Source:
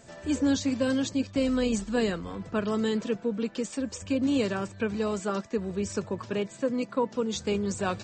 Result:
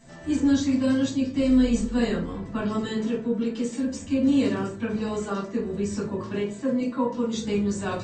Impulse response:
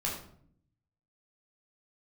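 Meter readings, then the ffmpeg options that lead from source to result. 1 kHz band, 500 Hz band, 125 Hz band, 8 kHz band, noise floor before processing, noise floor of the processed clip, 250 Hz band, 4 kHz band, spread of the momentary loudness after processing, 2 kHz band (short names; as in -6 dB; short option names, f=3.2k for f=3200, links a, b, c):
+1.0 dB, +0.5 dB, +3.5 dB, -0.5 dB, -49 dBFS, -39 dBFS, +5.0 dB, -0.5 dB, 8 LU, 0.0 dB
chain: -filter_complex "[1:a]atrim=start_sample=2205,asetrate=74970,aresample=44100[a];[0:a][a]afir=irnorm=-1:irlink=0"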